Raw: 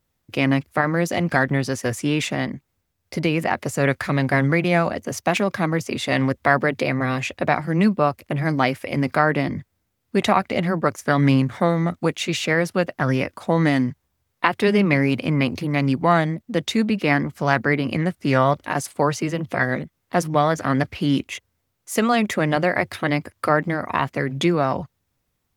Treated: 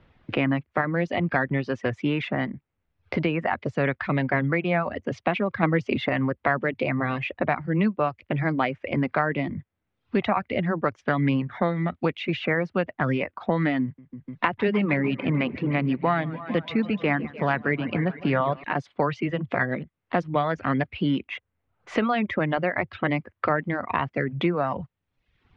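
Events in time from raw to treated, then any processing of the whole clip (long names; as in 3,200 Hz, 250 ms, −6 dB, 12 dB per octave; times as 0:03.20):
0:05.63–0:06.09: clip gain +6.5 dB
0:13.83–0:18.64: feedback echo with a swinging delay time 149 ms, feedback 71%, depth 85 cents, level −14 dB
whole clip: low-pass filter 3,100 Hz 24 dB per octave; reverb reduction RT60 0.66 s; multiband upward and downward compressor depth 70%; level −4 dB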